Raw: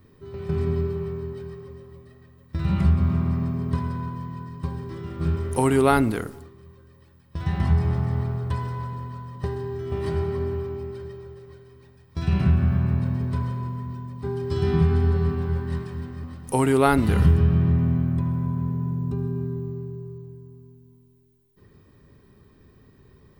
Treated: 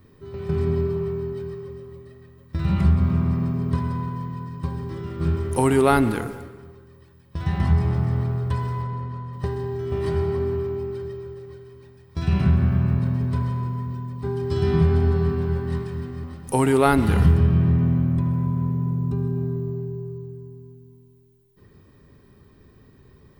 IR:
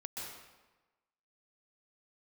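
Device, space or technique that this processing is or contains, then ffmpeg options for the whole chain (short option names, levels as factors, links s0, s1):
saturated reverb return: -filter_complex "[0:a]asplit=3[s0][s1][s2];[s0]afade=t=out:st=8.82:d=0.02[s3];[s1]aemphasis=mode=reproduction:type=50kf,afade=t=in:st=8.82:d=0.02,afade=t=out:st=9.32:d=0.02[s4];[s2]afade=t=in:st=9.32:d=0.02[s5];[s3][s4][s5]amix=inputs=3:normalize=0,asplit=2[s6][s7];[1:a]atrim=start_sample=2205[s8];[s7][s8]afir=irnorm=-1:irlink=0,asoftclip=type=tanh:threshold=0.119,volume=0.355[s9];[s6][s9]amix=inputs=2:normalize=0"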